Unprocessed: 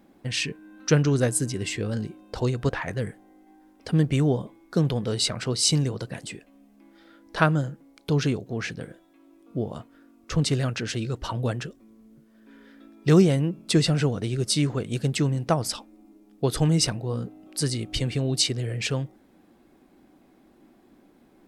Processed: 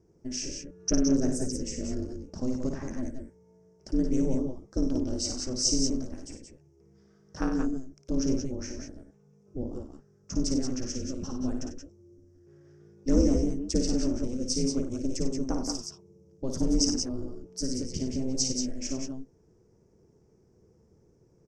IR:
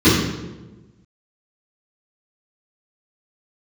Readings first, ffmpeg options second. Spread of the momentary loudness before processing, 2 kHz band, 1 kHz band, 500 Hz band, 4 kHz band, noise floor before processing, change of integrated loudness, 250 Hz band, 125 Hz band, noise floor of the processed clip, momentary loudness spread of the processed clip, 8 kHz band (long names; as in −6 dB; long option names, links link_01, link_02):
13 LU, −17.5 dB, −12.5 dB, −6.5 dB, −6.5 dB, −58 dBFS, −5.0 dB, −1.5 dB, −13.0 dB, −63 dBFS, 14 LU, −1.5 dB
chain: -filter_complex "[0:a]firequalizer=gain_entry='entry(110,0);entry(590,-12);entry(3900,-24);entry(5600,6);entry(10000,-21)':delay=0.05:min_phase=1,aeval=exprs='val(0)*sin(2*PI*130*n/s)':channel_layout=same,asplit=2[link_01][link_02];[link_02]aecho=0:1:55|95|172|186:0.501|0.282|0.355|0.447[link_03];[link_01][link_03]amix=inputs=2:normalize=0"